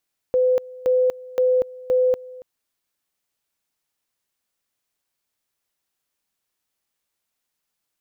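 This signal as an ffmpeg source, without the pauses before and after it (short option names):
-f lavfi -i "aevalsrc='pow(10,(-14.5-21*gte(mod(t,0.52),0.24))/20)*sin(2*PI*507*t)':d=2.08:s=44100"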